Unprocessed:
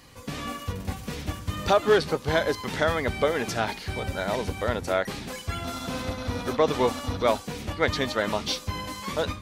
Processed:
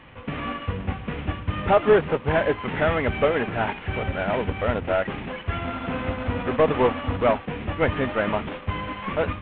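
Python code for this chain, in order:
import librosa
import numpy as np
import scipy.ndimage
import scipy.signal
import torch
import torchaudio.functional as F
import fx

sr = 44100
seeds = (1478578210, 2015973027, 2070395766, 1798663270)

y = fx.cvsd(x, sr, bps=16000)
y = y * librosa.db_to_amplitude(4.5)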